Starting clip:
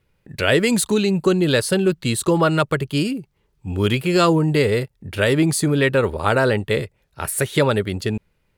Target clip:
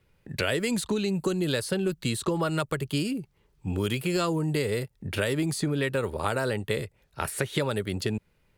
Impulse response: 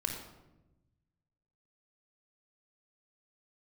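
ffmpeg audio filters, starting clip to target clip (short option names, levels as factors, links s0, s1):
-filter_complex "[0:a]acrossover=split=83|5700[s0][s1][s2];[s0]acompressor=threshold=0.00398:ratio=4[s3];[s1]acompressor=threshold=0.0501:ratio=4[s4];[s2]acompressor=threshold=0.0112:ratio=4[s5];[s3][s4][s5]amix=inputs=3:normalize=0"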